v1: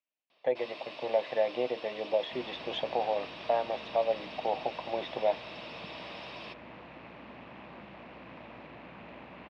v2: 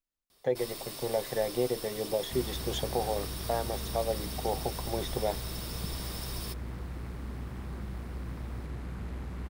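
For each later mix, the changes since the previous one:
master: remove speaker cabinet 300–3600 Hz, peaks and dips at 400 Hz -7 dB, 620 Hz +7 dB, 950 Hz +3 dB, 1400 Hz -4 dB, 2600 Hz +9 dB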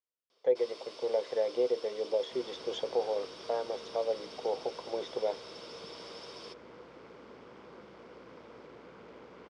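master: add speaker cabinet 460–5000 Hz, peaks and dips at 480 Hz +7 dB, 760 Hz -6 dB, 1200 Hz -3 dB, 1800 Hz -9 dB, 2600 Hz -4 dB, 4000 Hz -8 dB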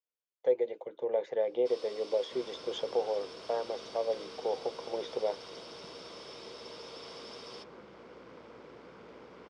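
first sound: entry +1.10 s

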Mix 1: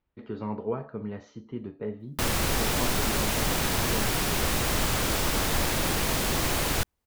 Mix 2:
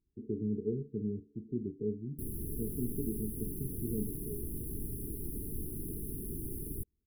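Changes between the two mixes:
background -10.5 dB; master: add brick-wall FIR band-stop 450–9600 Hz

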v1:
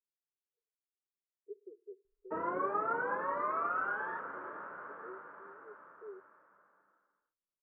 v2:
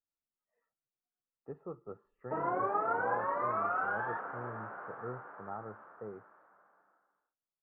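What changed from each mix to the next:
speech: remove Butterworth band-pass 400 Hz, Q 6; master: add bell 750 Hz +15 dB 0.24 oct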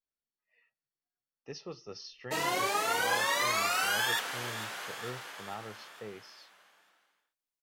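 master: remove elliptic low-pass 1400 Hz, stop band 80 dB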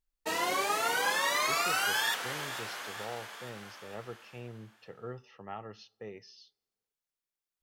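background: entry -2.05 s

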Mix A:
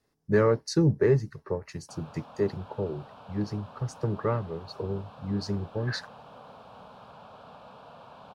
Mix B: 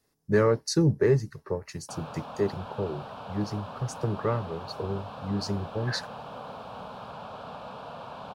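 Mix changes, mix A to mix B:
speech: add high shelf 6300 Hz +10.5 dB; background +8.0 dB

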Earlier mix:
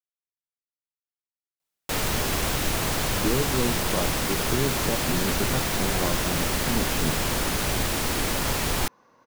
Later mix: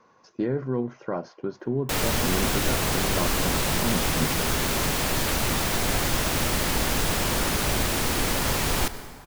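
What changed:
speech: entry -2.85 s; reverb: on, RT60 2.3 s

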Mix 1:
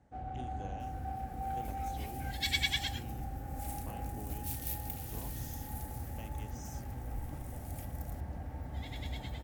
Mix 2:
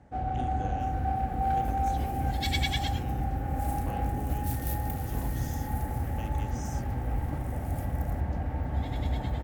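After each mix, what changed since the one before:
speech +5.5 dB; first sound +10.5 dB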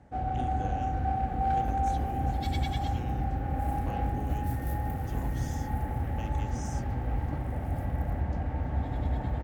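second sound -10.5 dB

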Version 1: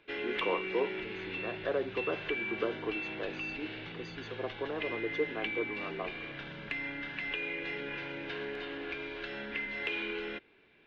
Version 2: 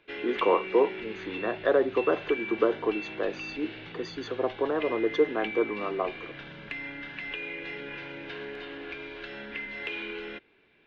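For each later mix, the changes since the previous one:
speech +9.5 dB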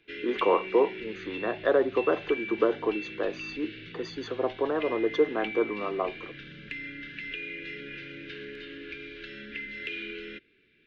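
background: add Butterworth band-stop 830 Hz, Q 0.69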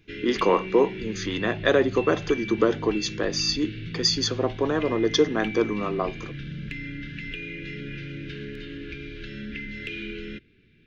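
speech: remove running mean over 17 samples; master: remove three-band isolator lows -17 dB, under 330 Hz, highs -13 dB, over 4800 Hz

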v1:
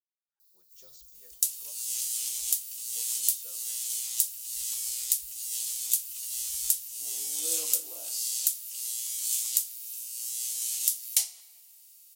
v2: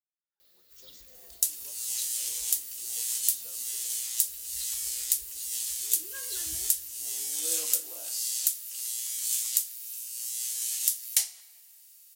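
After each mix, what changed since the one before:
first sound: remove inverse Chebyshev band-stop 180–1400 Hz, stop band 70 dB; second sound: add bell 1700 Hz +8.5 dB 0.52 oct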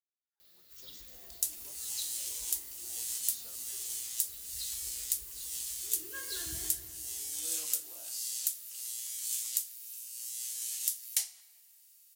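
first sound: send +9.5 dB; second sound -6.0 dB; master: add thirty-one-band EQ 100 Hz +4 dB, 160 Hz +6 dB, 500 Hz -6 dB

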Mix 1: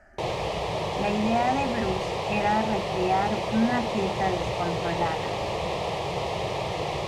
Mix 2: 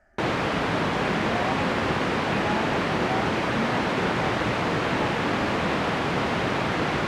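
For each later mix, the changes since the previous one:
speech -7.0 dB; background: remove fixed phaser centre 620 Hz, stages 4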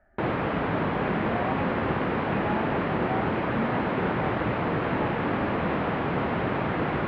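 master: add air absorption 500 m

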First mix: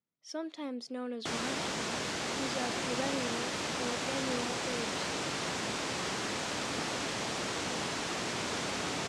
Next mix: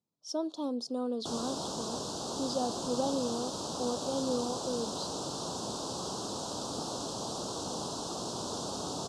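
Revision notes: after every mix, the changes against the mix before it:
speech +5.5 dB; master: add Chebyshev band-stop 1000–4200 Hz, order 2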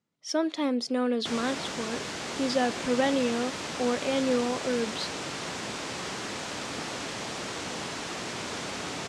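speech +6.0 dB; master: remove Chebyshev band-stop 1000–4200 Hz, order 2

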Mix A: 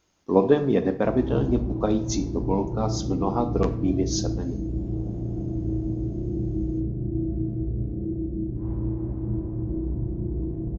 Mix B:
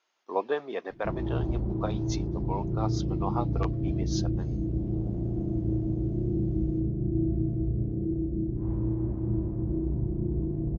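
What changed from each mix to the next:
speech: add BPF 720–4200 Hz; reverb: off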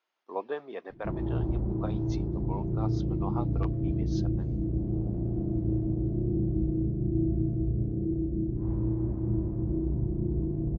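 speech -5.0 dB; master: add air absorption 120 m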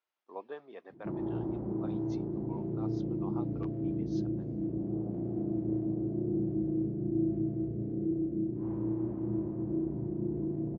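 speech -9.0 dB; background: add HPF 190 Hz 12 dB/oct

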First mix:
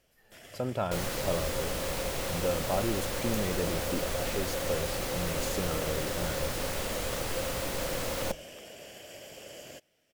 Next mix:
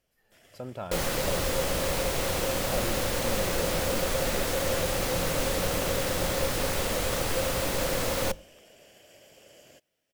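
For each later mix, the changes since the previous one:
speech -6.0 dB; first sound -8.0 dB; second sound +5.0 dB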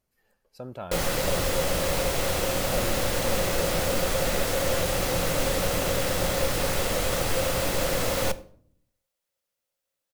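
first sound: muted; second sound: send +10.5 dB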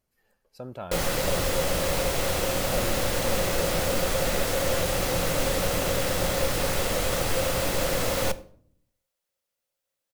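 none

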